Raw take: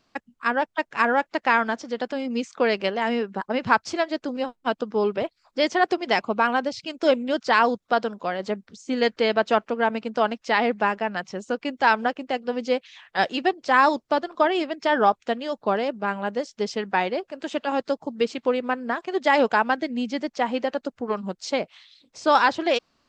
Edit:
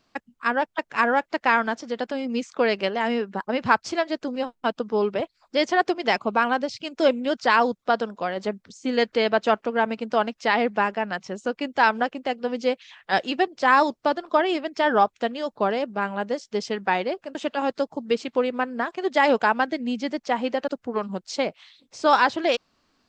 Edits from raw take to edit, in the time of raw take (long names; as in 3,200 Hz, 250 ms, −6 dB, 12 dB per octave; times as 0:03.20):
compress silence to 75%